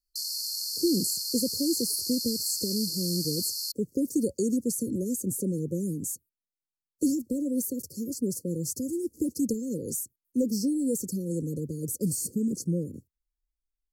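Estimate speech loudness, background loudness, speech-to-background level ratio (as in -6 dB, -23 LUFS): -30.0 LUFS, -30.5 LUFS, 0.5 dB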